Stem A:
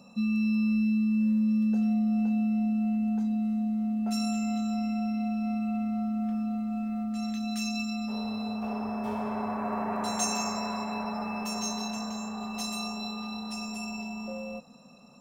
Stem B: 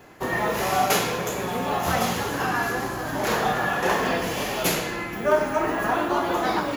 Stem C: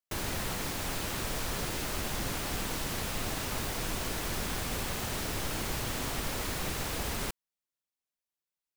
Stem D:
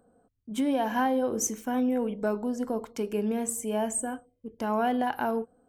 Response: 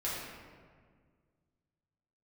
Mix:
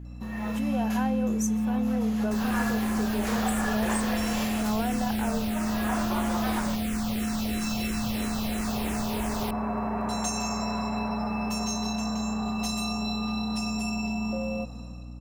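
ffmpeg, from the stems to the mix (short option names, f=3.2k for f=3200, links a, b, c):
-filter_complex "[0:a]lowshelf=f=210:g=5.5,adelay=50,volume=-3.5dB[a];[1:a]highpass=430,volume=-9dB,afade=t=in:st=2.11:d=0.49:silence=0.298538,afade=t=out:st=3.96:d=0.63:silence=0.298538[b];[2:a]asplit=2[c][d];[d]afreqshift=-3[e];[c][e]amix=inputs=2:normalize=1,adelay=2200,volume=-1dB[f];[3:a]equalizer=f=250:w=1.5:g=-4,volume=-17dB,asplit=2[g][h];[h]apad=whole_len=298330[i];[b][i]sidechaincompress=threshold=-54dB:ratio=10:attack=8.4:release=559[j];[a][f]amix=inputs=2:normalize=0,acompressor=threshold=-39dB:ratio=6,volume=0dB[k];[j][g][k]amix=inputs=3:normalize=0,dynaudnorm=f=110:g=9:m=12dB,aeval=exprs='val(0)+0.0112*(sin(2*PI*60*n/s)+sin(2*PI*2*60*n/s)/2+sin(2*PI*3*60*n/s)/3+sin(2*PI*4*60*n/s)/4+sin(2*PI*5*60*n/s)/5)':c=same"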